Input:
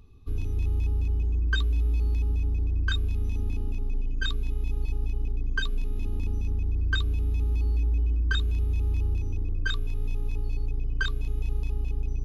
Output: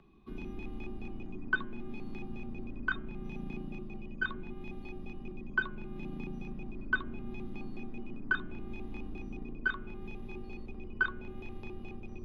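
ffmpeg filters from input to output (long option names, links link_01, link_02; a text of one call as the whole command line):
ffmpeg -i in.wav -filter_complex "[0:a]acrossover=split=2200[link_01][link_02];[link_02]acompressor=threshold=-53dB:ratio=6[link_03];[link_01][link_03]amix=inputs=2:normalize=0,acrossover=split=170 3200:gain=0.1 1 0.1[link_04][link_05][link_06];[link_04][link_05][link_06]amix=inputs=3:normalize=0,bandreject=frequency=138:width_type=h:width=4,bandreject=frequency=276:width_type=h:width=4,bandreject=frequency=414:width_type=h:width=4,bandreject=frequency=552:width_type=h:width=4,bandreject=frequency=690:width_type=h:width=4,bandreject=frequency=828:width_type=h:width=4,bandreject=frequency=966:width_type=h:width=4,bandreject=frequency=1104:width_type=h:width=4,bandreject=frequency=1242:width_type=h:width=4,bandreject=frequency=1380:width_type=h:width=4,bandreject=frequency=1518:width_type=h:width=4,bandreject=frequency=1656:width_type=h:width=4,bandreject=frequency=1794:width_type=h:width=4,bandreject=frequency=1932:width_type=h:width=4,bandreject=frequency=2070:width_type=h:width=4,bandreject=frequency=2208:width_type=h:width=4,bandreject=frequency=2346:width_type=h:width=4,bandreject=frequency=2484:width_type=h:width=4,bandreject=frequency=2622:width_type=h:width=4,bandreject=frequency=2760:width_type=h:width=4,bandreject=frequency=2898:width_type=h:width=4,bandreject=frequency=3036:width_type=h:width=4,bandreject=frequency=3174:width_type=h:width=4,afreqshift=-48,volume=3dB" out.wav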